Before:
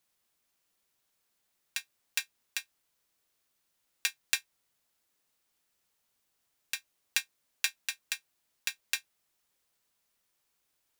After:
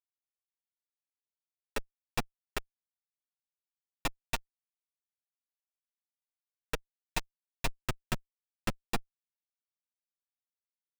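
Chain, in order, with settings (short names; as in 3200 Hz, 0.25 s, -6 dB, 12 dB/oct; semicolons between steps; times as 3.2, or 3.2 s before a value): Schmitt trigger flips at -25 dBFS; flange 0.29 Hz, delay 6 ms, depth 3.3 ms, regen -1%; gain +18 dB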